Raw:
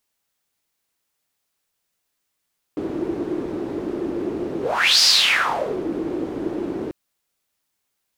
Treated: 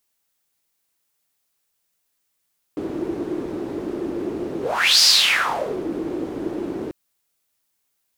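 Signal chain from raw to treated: high shelf 6900 Hz +6 dB; gain -1 dB

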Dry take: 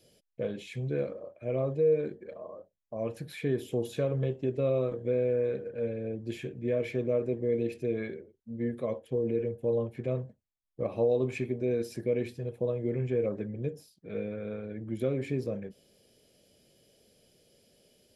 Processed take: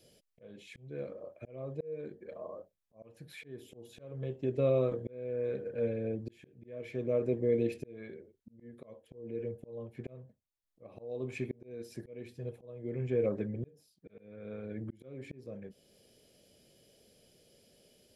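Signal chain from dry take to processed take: auto swell 0.657 s

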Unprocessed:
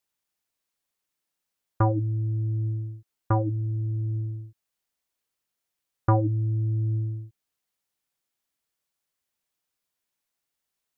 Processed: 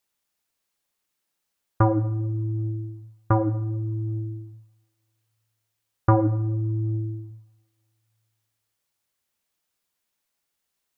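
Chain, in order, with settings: reverb, pre-delay 3 ms, DRR 9 dB; gain +3.5 dB

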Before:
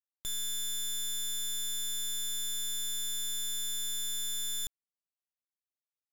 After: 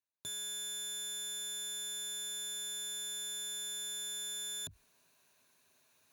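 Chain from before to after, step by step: self-modulated delay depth 0.059 ms; ripple EQ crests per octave 1.5, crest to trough 8 dB; in parallel at -4.5 dB: bit-crush 5-bit; on the sum: HPF 94 Hz 24 dB/oct; high shelf 3800 Hz -5.5 dB; reverse; upward compressor, threshold -47 dBFS; reverse

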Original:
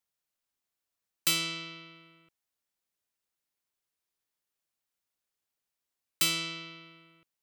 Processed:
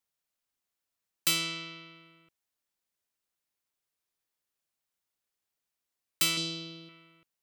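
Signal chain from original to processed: 6.37–6.89 graphic EQ 125/250/500/1000/2000/4000/8000 Hz +4/+7/+5/-6/-11/+7/+4 dB

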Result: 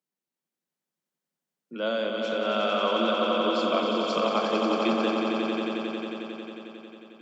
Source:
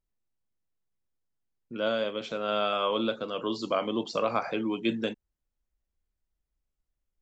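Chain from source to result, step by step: steep high-pass 150 Hz 96 dB/oct; on a send: swelling echo 90 ms, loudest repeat 5, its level -6.5 dB

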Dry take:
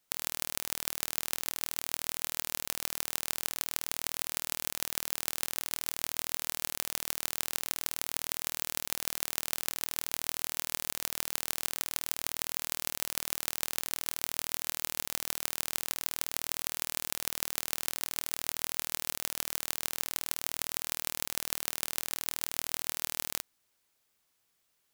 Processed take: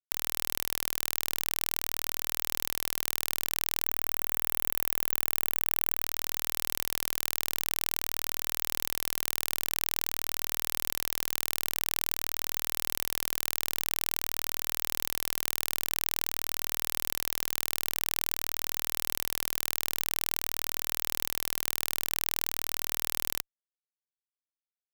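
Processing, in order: 3.83–6.04 high shelf 8400 Hz +11.5 dB; fuzz box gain 28 dB, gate -38 dBFS; gain +6 dB

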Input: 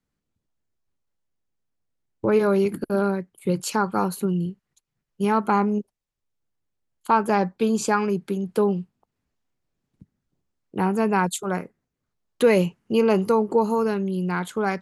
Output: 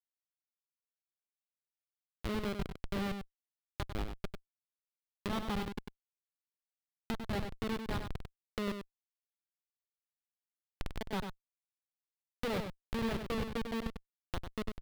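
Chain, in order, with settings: steep high-pass 190 Hz 48 dB/oct; low-pass opened by the level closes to 1500 Hz, open at -16 dBFS; rotary speaker horn 0.9 Hz, later 5 Hz, at 6.57; power-law curve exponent 2; Schmitt trigger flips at -29 dBFS; resonant high shelf 5100 Hz -6 dB, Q 1.5; echo 97 ms -7 dB; mismatched tape noise reduction encoder only; gain +2 dB

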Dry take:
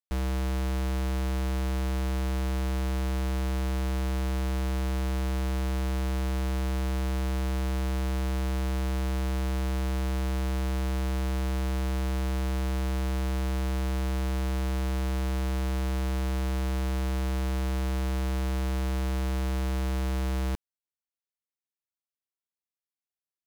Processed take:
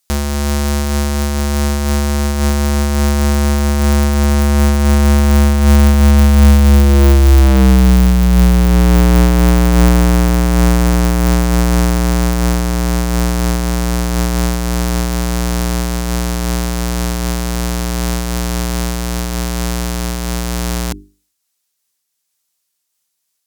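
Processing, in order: Doppler pass-by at 7.6, 33 m/s, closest 22 m; tone controls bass +13 dB, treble +13 dB; notches 50/100/150/200/250/300/350/400 Hz; overdrive pedal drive 28 dB, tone 7100 Hz, clips at -12.5 dBFS; maximiser +24 dB; noise-modulated level, depth 50%

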